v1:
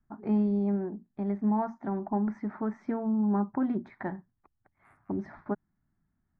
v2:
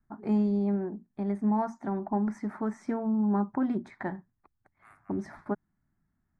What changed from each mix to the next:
first voice: remove high-frequency loss of the air 230 metres
second voice +7.5 dB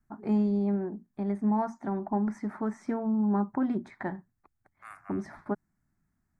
second voice +11.0 dB

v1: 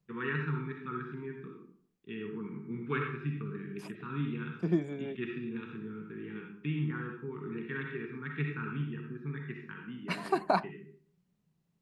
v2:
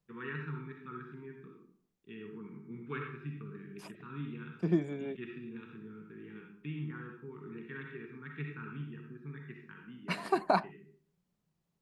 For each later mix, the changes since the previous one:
first voice −6.5 dB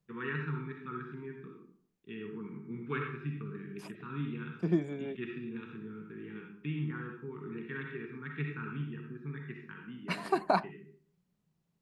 first voice +4.0 dB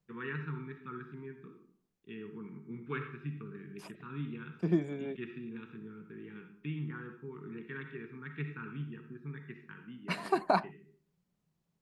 first voice: send −6.5 dB

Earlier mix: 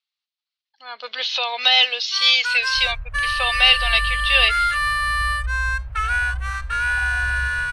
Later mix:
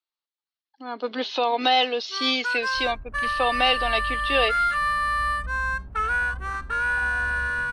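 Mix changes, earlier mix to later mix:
second sound −8.0 dB
master: remove drawn EQ curve 110 Hz 0 dB, 280 Hz −30 dB, 540 Hz −5 dB, 800 Hz −5 dB, 2,400 Hz +9 dB

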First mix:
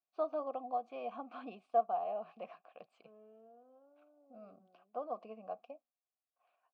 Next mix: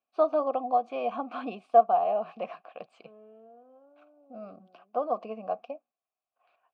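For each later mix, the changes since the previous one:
first voice +11.5 dB
second voice +7.0 dB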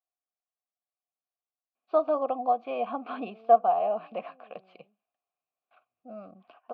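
first voice: entry +1.75 s
master: add low-pass filter 4,200 Hz 24 dB per octave

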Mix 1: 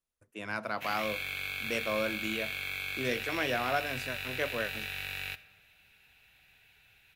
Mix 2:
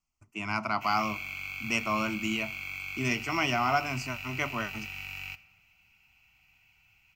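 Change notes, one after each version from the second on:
speech +9.0 dB
master: add phaser with its sweep stopped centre 2,500 Hz, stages 8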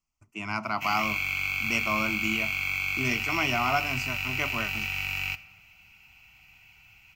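background +9.0 dB

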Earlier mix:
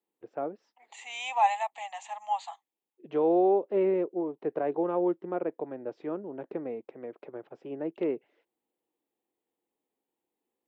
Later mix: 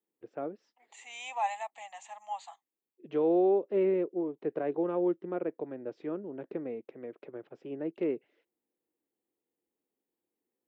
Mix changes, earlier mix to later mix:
second voice: add parametric band 3,300 Hz −6.5 dB 1.9 octaves
master: add parametric band 850 Hz −7 dB 1.1 octaves

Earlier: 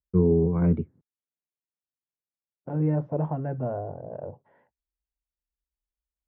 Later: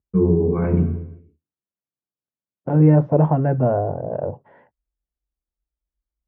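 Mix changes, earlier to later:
second voice +11.5 dB
reverb: on, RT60 0.85 s

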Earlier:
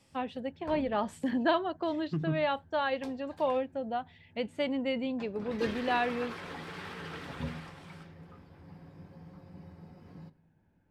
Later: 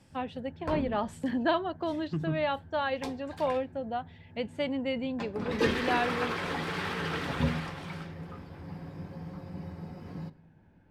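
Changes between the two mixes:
second voice: remove high-frequency loss of the air 120 metres
background +9.0 dB

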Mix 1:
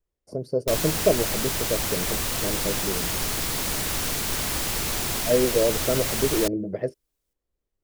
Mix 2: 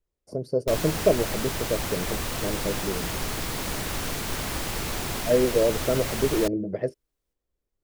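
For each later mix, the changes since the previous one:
background: add high-shelf EQ 3,300 Hz −7.5 dB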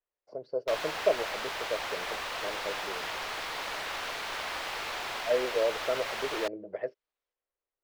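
speech: add high-frequency loss of the air 180 metres
master: add three-way crossover with the lows and the highs turned down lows −24 dB, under 520 Hz, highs −17 dB, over 4,600 Hz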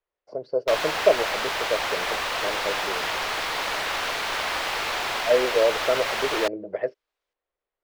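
speech +7.5 dB
background +8.5 dB

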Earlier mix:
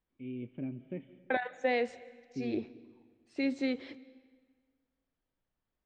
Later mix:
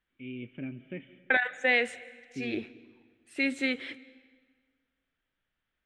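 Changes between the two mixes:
second voice: remove low-pass filter 5,500 Hz 24 dB per octave
master: add flat-topped bell 2,200 Hz +11.5 dB

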